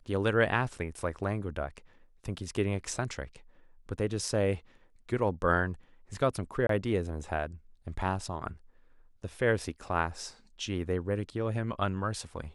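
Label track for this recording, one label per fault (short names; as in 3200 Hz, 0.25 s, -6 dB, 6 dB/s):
6.670000	6.690000	gap 23 ms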